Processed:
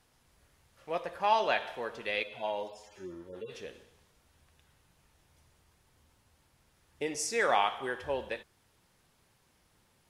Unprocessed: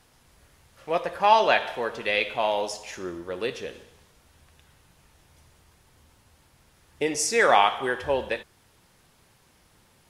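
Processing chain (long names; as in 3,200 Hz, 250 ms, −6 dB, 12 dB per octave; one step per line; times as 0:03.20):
0:02.23–0:03.52: harmonic-percussive split with one part muted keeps harmonic
level −8.5 dB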